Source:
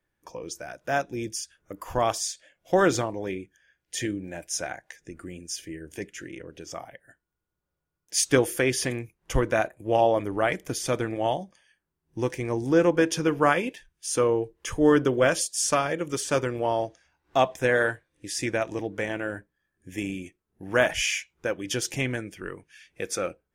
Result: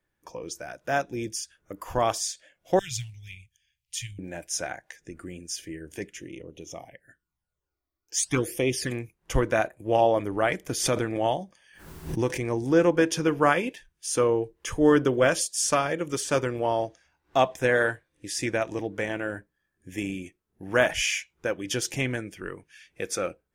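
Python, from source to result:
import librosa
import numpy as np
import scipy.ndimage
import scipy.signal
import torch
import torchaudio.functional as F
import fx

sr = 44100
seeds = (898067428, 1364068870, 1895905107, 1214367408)

y = fx.ellip_bandstop(x, sr, low_hz=120.0, high_hz=2500.0, order=3, stop_db=40, at=(2.79, 4.19))
y = fx.phaser_stages(y, sr, stages=12, low_hz=150.0, high_hz=1600.0, hz=fx.line((6.17, 0.19), (8.9, 0.95)), feedback_pct=5, at=(6.17, 8.9), fade=0.02)
y = fx.pre_swell(y, sr, db_per_s=63.0, at=(10.72, 12.51))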